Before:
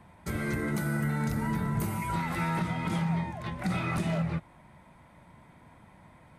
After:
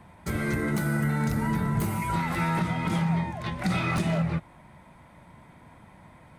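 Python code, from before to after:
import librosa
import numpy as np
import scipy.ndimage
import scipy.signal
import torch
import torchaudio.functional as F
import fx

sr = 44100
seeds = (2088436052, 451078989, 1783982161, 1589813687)

y = fx.tracing_dist(x, sr, depth_ms=0.026)
y = fx.dynamic_eq(y, sr, hz=4400.0, q=0.75, threshold_db=-53.0, ratio=4.0, max_db=4, at=(3.33, 4.02))
y = y * librosa.db_to_amplitude(3.5)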